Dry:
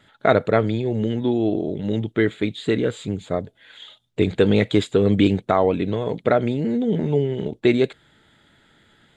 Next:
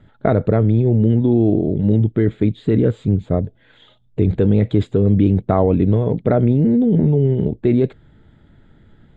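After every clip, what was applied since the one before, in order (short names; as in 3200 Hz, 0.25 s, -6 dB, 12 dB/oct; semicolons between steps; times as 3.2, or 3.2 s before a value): tilt -4.5 dB/oct; in parallel at 0 dB: negative-ratio compressor -12 dBFS, ratio -0.5; on the sum: gain -8.5 dB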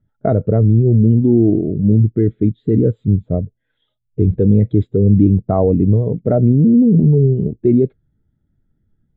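spectral expander 1.5:1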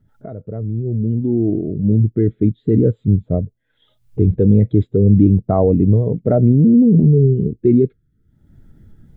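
opening faded in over 2.50 s; spectral gain 7.09–8.31, 510–1200 Hz -14 dB; upward compressor, threshold -27 dBFS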